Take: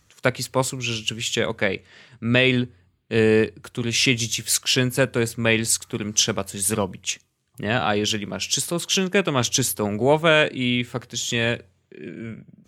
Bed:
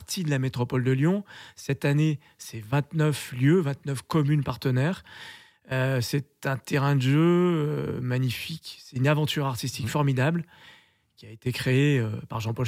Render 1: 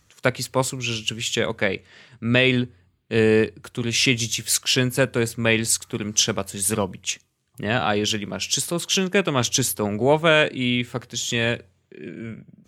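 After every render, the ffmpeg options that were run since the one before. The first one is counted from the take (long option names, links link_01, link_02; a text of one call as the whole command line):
ffmpeg -i in.wav -filter_complex "[0:a]asettb=1/sr,asplit=3[link_01][link_02][link_03];[link_01]atrim=end=9.774[link_04];[link_02]atrim=start=9.77:end=10.23,asetpts=PTS-STARTPTS,afade=type=in:duration=0.004:curve=qsin,afade=type=out:start_time=0.456:duration=0.004:curve=qsin,highshelf=frequency=9100:gain=-5[link_05];[link_03]atrim=start=10.226[link_06];[link_04][link_05]acrossfade=duration=0.004:curve1=hsin:curve2=qsin[link_07];[link_07][link_06]acrossfade=duration=0.004:curve1=qsin:curve2=hsin" out.wav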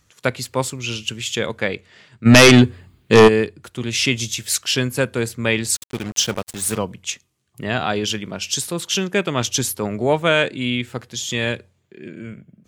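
ffmpeg -i in.wav -filter_complex "[0:a]asplit=3[link_01][link_02][link_03];[link_01]afade=type=out:start_time=2.25:duration=0.02[link_04];[link_02]aeval=exprs='0.708*sin(PI/2*3.16*val(0)/0.708)':channel_layout=same,afade=type=in:start_time=2.25:duration=0.02,afade=type=out:start_time=3.27:duration=0.02[link_05];[link_03]afade=type=in:start_time=3.27:duration=0.02[link_06];[link_04][link_05][link_06]amix=inputs=3:normalize=0,asettb=1/sr,asplit=3[link_07][link_08][link_09];[link_07]atrim=end=5.744[link_10];[link_08]atrim=start=5.74:end=6.78,asetpts=PTS-STARTPTS,afade=type=in:duration=0.004:curve=qsin,afade=type=out:start_time=1.036:duration=0.004:curve=qsin,acrusher=bits=4:mix=0:aa=0.5[link_11];[link_09]atrim=start=6.776[link_12];[link_10][link_11]acrossfade=duration=0.004:curve1=hsin:curve2=qsin[link_13];[link_13][link_12]acrossfade=duration=0.004:curve1=qsin:curve2=hsin" out.wav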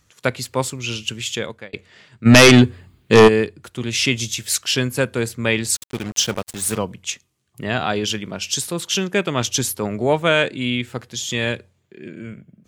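ffmpeg -i in.wav -filter_complex "[0:a]asplit=2[link_01][link_02];[link_01]atrim=end=1.73,asetpts=PTS-STARTPTS,afade=type=out:start_time=1.27:duration=0.46[link_03];[link_02]atrim=start=1.73,asetpts=PTS-STARTPTS,afade=type=in:duration=0.004:curve=hsin[link_04];[link_03][link_04]concat=n=2:v=0:a=1" out.wav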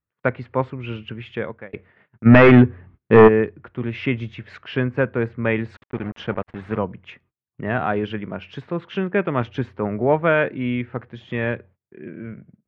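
ffmpeg -i in.wav -af "agate=range=-26dB:threshold=-46dB:ratio=16:detection=peak,lowpass=frequency=2000:width=0.5412,lowpass=frequency=2000:width=1.3066" out.wav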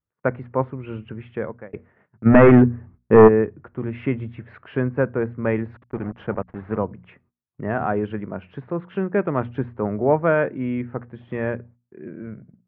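ffmpeg -i in.wav -af "lowpass=1400,bandreject=frequency=60:width_type=h:width=6,bandreject=frequency=120:width_type=h:width=6,bandreject=frequency=180:width_type=h:width=6,bandreject=frequency=240:width_type=h:width=6" out.wav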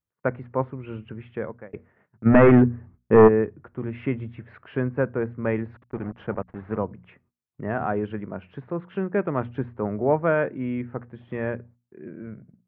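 ffmpeg -i in.wav -af "volume=-3dB" out.wav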